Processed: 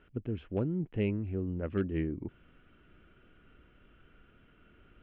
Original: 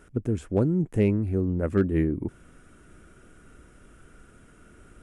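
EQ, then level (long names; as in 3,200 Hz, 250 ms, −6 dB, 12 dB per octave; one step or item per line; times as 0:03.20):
transistor ladder low-pass 3,300 Hz, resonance 65%
high-frequency loss of the air 200 metres
+2.5 dB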